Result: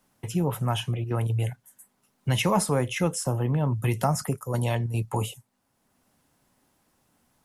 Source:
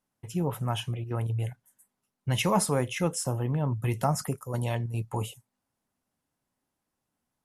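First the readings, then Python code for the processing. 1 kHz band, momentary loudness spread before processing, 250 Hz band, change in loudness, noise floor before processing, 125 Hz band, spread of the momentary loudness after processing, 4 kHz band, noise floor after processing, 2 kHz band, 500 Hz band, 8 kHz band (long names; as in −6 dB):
+2.0 dB, 9 LU, +3.0 dB, +3.0 dB, −84 dBFS, +3.5 dB, 7 LU, +2.5 dB, −73 dBFS, +3.0 dB, +2.5 dB, +1.0 dB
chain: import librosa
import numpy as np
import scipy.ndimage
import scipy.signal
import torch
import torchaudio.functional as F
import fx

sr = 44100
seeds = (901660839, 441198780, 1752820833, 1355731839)

y = fx.band_squash(x, sr, depth_pct=40)
y = F.gain(torch.from_numpy(y), 3.0).numpy()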